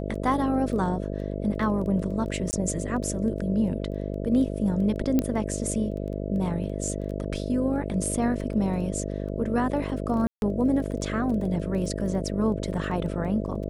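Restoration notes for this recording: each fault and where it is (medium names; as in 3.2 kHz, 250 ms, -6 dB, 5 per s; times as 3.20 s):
buzz 50 Hz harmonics 13 -31 dBFS
crackle 11 per s -34 dBFS
2.51–2.53 s: dropout 19 ms
5.19 s: pop -11 dBFS
10.27–10.42 s: dropout 151 ms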